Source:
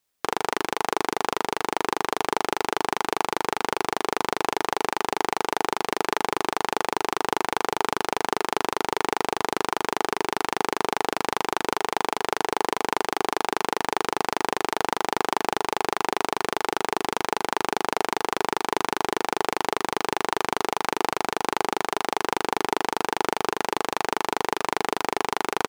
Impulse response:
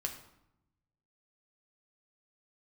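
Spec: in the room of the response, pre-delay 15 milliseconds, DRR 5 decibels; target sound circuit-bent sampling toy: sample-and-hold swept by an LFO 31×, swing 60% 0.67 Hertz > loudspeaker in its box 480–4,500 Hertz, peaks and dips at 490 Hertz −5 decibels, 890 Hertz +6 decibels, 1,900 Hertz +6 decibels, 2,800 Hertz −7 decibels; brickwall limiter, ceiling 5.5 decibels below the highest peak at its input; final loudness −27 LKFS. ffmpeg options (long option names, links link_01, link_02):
-filter_complex "[0:a]alimiter=limit=-8.5dB:level=0:latency=1,asplit=2[link_01][link_02];[1:a]atrim=start_sample=2205,adelay=15[link_03];[link_02][link_03]afir=irnorm=-1:irlink=0,volume=-6dB[link_04];[link_01][link_04]amix=inputs=2:normalize=0,acrusher=samples=31:mix=1:aa=0.000001:lfo=1:lforange=18.6:lforate=0.67,highpass=480,equalizer=frequency=490:width_type=q:width=4:gain=-5,equalizer=frequency=890:width_type=q:width=4:gain=6,equalizer=frequency=1900:width_type=q:width=4:gain=6,equalizer=frequency=2800:width_type=q:width=4:gain=-7,lowpass=frequency=4500:width=0.5412,lowpass=frequency=4500:width=1.3066,volume=3.5dB"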